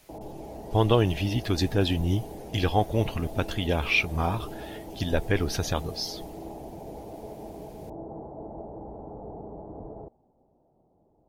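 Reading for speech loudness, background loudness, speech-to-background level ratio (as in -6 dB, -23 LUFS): -27.0 LUFS, -41.5 LUFS, 14.5 dB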